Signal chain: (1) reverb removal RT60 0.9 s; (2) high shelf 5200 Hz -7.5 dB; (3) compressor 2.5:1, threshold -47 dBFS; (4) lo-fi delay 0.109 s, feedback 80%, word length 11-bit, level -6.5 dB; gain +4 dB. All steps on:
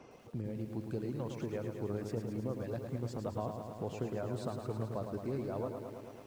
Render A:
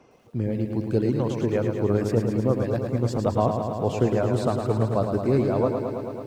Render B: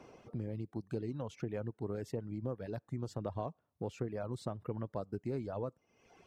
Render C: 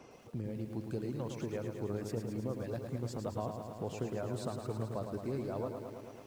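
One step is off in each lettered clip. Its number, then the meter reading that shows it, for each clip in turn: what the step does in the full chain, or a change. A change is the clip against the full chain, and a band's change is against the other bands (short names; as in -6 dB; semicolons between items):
3, mean gain reduction 13.5 dB; 4, loudness change -1.5 LU; 2, 8 kHz band +4.0 dB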